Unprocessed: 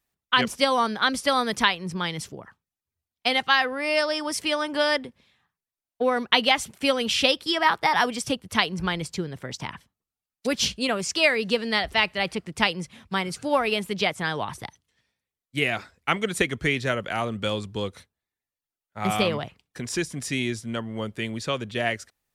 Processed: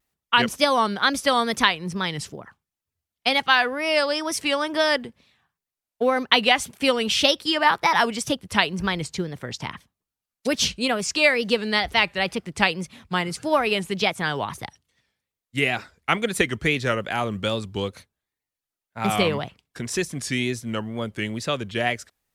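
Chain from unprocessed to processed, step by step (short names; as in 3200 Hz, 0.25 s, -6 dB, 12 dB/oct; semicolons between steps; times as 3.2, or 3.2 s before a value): short-mantissa float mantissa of 6-bit; wow and flutter 110 cents; gain +2 dB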